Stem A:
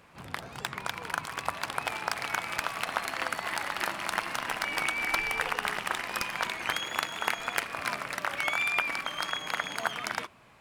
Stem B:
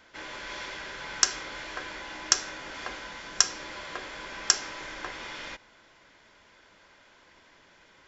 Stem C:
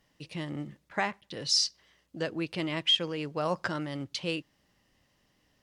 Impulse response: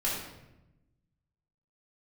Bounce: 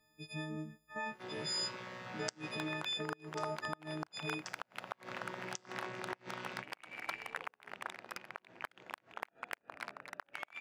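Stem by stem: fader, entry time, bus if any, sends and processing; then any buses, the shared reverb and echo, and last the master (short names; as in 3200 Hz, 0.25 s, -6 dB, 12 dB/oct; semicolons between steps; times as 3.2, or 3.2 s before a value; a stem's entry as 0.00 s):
-9.0 dB, 1.95 s, no send, Wiener smoothing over 41 samples; HPF 370 Hz 6 dB/oct; high shelf 4800 Hz -8.5 dB
2.49 s -10 dB -> 2.91 s -22.5 dB -> 4.65 s -22.5 dB -> 5.13 s -9.5 dB, 1.05 s, no send, chord vocoder bare fifth, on B2
-5.5 dB, 0.00 s, no send, frequency quantiser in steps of 6 st; high shelf 2100 Hz -9.5 dB; limiter -25.5 dBFS, peak gain reduction 11.5 dB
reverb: off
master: flipped gate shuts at -23 dBFS, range -26 dB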